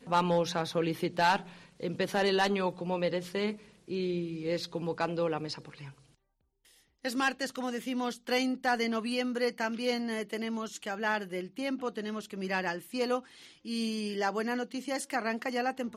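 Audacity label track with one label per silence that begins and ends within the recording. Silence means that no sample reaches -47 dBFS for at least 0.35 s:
5.920000	7.050000	silence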